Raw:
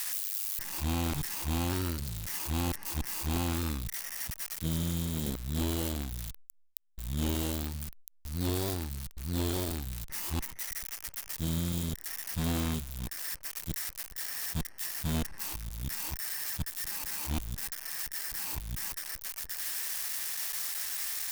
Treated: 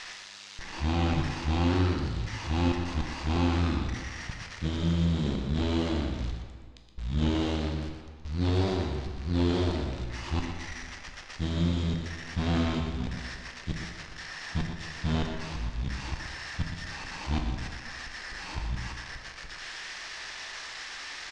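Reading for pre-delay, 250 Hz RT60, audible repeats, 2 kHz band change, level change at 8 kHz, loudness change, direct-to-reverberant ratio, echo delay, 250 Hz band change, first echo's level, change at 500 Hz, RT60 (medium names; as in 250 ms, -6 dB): 10 ms, 1.7 s, 1, +5.5 dB, -11.0 dB, +2.0 dB, 1.5 dB, 120 ms, +6.0 dB, -8.5 dB, +6.5 dB, 1.7 s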